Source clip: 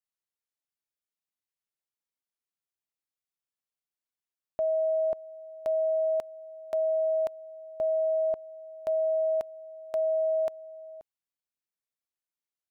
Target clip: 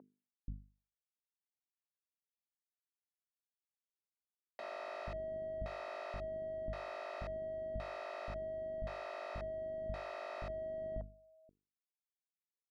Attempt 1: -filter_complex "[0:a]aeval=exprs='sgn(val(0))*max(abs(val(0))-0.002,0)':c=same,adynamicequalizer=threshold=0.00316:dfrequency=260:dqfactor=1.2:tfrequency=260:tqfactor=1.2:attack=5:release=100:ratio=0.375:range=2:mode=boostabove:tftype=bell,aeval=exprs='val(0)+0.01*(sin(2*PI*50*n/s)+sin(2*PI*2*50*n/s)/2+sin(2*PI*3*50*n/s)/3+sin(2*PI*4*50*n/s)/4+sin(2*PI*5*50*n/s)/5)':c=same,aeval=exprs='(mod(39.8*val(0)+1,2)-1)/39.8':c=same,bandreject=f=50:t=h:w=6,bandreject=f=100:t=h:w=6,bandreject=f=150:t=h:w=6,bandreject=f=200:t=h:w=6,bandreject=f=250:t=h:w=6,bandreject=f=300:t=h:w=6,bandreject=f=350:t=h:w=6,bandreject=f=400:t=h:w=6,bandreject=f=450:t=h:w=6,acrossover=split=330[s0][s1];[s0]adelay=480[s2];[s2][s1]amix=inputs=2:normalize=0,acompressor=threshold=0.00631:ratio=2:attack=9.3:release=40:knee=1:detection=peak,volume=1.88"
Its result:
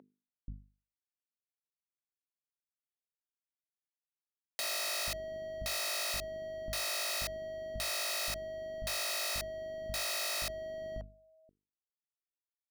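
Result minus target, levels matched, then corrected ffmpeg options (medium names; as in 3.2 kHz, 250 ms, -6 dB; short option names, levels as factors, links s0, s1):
1 kHz band -6.0 dB
-filter_complex "[0:a]aeval=exprs='sgn(val(0))*max(abs(val(0))-0.002,0)':c=same,adynamicequalizer=threshold=0.00316:dfrequency=260:dqfactor=1.2:tfrequency=260:tqfactor=1.2:attack=5:release=100:ratio=0.375:range=2:mode=boostabove:tftype=bell,aeval=exprs='val(0)+0.01*(sin(2*PI*50*n/s)+sin(2*PI*2*50*n/s)/2+sin(2*PI*3*50*n/s)/3+sin(2*PI*4*50*n/s)/4+sin(2*PI*5*50*n/s)/5)':c=same,aeval=exprs='(mod(39.8*val(0)+1,2)-1)/39.8':c=same,bandreject=f=50:t=h:w=6,bandreject=f=100:t=h:w=6,bandreject=f=150:t=h:w=6,bandreject=f=200:t=h:w=6,bandreject=f=250:t=h:w=6,bandreject=f=300:t=h:w=6,bandreject=f=350:t=h:w=6,bandreject=f=400:t=h:w=6,bandreject=f=450:t=h:w=6,acrossover=split=330[s0][s1];[s0]adelay=480[s2];[s2][s1]amix=inputs=2:normalize=0,acompressor=threshold=0.00631:ratio=2:attack=9.3:release=40:knee=1:detection=peak,lowpass=1100,volume=1.88"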